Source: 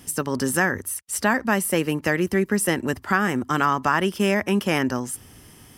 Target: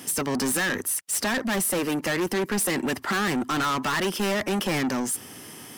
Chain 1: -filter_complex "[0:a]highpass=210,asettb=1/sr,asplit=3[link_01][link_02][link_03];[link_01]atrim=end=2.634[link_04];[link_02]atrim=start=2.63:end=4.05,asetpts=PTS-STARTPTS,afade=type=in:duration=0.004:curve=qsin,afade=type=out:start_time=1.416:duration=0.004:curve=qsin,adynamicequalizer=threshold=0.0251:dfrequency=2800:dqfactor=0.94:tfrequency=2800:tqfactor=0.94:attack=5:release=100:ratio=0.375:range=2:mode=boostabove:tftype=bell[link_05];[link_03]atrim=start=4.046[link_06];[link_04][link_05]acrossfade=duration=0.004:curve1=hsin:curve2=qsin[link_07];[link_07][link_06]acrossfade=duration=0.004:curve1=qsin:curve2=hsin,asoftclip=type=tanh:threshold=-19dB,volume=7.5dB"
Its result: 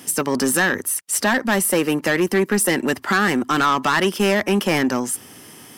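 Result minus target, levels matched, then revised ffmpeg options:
soft clipping: distortion −6 dB
-filter_complex "[0:a]highpass=210,asettb=1/sr,asplit=3[link_01][link_02][link_03];[link_01]atrim=end=2.634[link_04];[link_02]atrim=start=2.63:end=4.05,asetpts=PTS-STARTPTS,afade=type=in:duration=0.004:curve=qsin,afade=type=out:start_time=1.416:duration=0.004:curve=qsin,adynamicequalizer=threshold=0.0251:dfrequency=2800:dqfactor=0.94:tfrequency=2800:tqfactor=0.94:attack=5:release=100:ratio=0.375:range=2:mode=boostabove:tftype=bell[link_05];[link_03]atrim=start=4.046[link_06];[link_04][link_05]acrossfade=duration=0.004:curve1=hsin:curve2=qsin[link_07];[link_07][link_06]acrossfade=duration=0.004:curve1=qsin:curve2=hsin,asoftclip=type=tanh:threshold=-30dB,volume=7.5dB"

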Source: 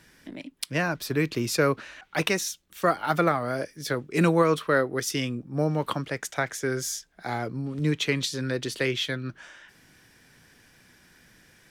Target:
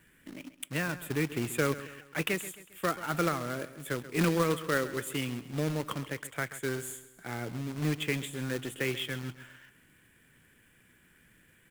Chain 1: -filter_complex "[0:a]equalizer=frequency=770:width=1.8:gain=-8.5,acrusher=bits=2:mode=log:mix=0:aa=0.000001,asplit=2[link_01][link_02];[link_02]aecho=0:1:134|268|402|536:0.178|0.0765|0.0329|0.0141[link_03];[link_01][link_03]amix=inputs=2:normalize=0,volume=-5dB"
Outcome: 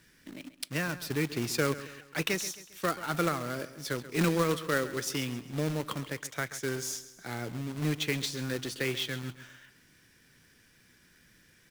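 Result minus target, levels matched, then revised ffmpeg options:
4,000 Hz band +3.0 dB
-filter_complex "[0:a]asuperstop=centerf=5000:order=8:qfactor=1.3,equalizer=frequency=770:width=1.8:gain=-8.5,acrusher=bits=2:mode=log:mix=0:aa=0.000001,asplit=2[link_01][link_02];[link_02]aecho=0:1:134|268|402|536:0.178|0.0765|0.0329|0.0141[link_03];[link_01][link_03]amix=inputs=2:normalize=0,volume=-5dB"

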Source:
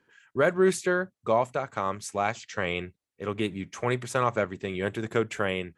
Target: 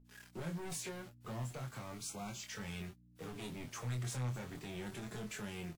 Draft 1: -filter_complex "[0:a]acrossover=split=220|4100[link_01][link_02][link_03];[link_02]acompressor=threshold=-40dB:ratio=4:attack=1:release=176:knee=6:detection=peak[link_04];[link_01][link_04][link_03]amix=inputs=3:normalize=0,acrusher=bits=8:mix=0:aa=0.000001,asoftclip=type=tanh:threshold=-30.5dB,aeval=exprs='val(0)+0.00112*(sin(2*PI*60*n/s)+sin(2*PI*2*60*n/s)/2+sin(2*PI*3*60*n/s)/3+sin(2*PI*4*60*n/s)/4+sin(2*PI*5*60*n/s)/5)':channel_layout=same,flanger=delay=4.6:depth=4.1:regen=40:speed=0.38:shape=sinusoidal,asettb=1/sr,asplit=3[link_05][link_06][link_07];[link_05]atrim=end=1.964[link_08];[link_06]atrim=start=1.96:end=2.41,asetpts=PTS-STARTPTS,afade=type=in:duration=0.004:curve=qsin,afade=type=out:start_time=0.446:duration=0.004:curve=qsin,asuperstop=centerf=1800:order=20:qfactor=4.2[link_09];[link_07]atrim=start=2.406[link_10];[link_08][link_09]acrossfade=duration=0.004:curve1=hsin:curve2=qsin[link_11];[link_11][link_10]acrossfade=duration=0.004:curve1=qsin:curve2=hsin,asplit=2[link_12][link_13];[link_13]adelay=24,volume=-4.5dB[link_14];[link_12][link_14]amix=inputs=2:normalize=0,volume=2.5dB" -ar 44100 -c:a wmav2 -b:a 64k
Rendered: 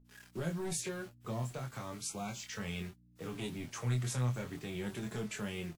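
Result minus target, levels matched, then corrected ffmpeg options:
soft clipping: distortion −8 dB
-filter_complex "[0:a]acrossover=split=220|4100[link_01][link_02][link_03];[link_02]acompressor=threshold=-40dB:ratio=4:attack=1:release=176:knee=6:detection=peak[link_04];[link_01][link_04][link_03]amix=inputs=3:normalize=0,acrusher=bits=8:mix=0:aa=0.000001,asoftclip=type=tanh:threshold=-40dB,aeval=exprs='val(0)+0.00112*(sin(2*PI*60*n/s)+sin(2*PI*2*60*n/s)/2+sin(2*PI*3*60*n/s)/3+sin(2*PI*4*60*n/s)/4+sin(2*PI*5*60*n/s)/5)':channel_layout=same,flanger=delay=4.6:depth=4.1:regen=40:speed=0.38:shape=sinusoidal,asettb=1/sr,asplit=3[link_05][link_06][link_07];[link_05]atrim=end=1.964[link_08];[link_06]atrim=start=1.96:end=2.41,asetpts=PTS-STARTPTS,afade=type=in:duration=0.004:curve=qsin,afade=type=out:start_time=0.446:duration=0.004:curve=qsin,asuperstop=centerf=1800:order=20:qfactor=4.2[link_09];[link_07]atrim=start=2.406[link_10];[link_08][link_09]acrossfade=duration=0.004:curve1=hsin:curve2=qsin[link_11];[link_11][link_10]acrossfade=duration=0.004:curve1=qsin:curve2=hsin,asplit=2[link_12][link_13];[link_13]adelay=24,volume=-4.5dB[link_14];[link_12][link_14]amix=inputs=2:normalize=0,volume=2.5dB" -ar 44100 -c:a wmav2 -b:a 64k

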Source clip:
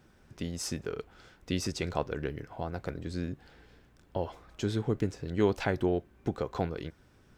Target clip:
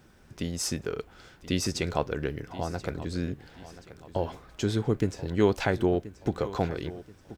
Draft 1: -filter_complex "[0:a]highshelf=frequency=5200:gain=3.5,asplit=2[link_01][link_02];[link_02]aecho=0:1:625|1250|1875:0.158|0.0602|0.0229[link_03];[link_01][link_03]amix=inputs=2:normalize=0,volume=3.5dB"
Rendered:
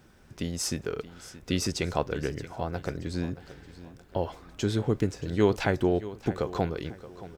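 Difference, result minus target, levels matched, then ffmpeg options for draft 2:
echo 405 ms early
-filter_complex "[0:a]highshelf=frequency=5200:gain=3.5,asplit=2[link_01][link_02];[link_02]aecho=0:1:1030|2060|3090:0.158|0.0602|0.0229[link_03];[link_01][link_03]amix=inputs=2:normalize=0,volume=3.5dB"

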